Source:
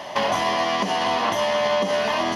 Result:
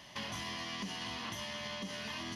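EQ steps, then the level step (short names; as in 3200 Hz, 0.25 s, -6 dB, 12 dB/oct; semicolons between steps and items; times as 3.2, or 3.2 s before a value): passive tone stack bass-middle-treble 6-0-2; low shelf 150 Hz +4 dB; +3.5 dB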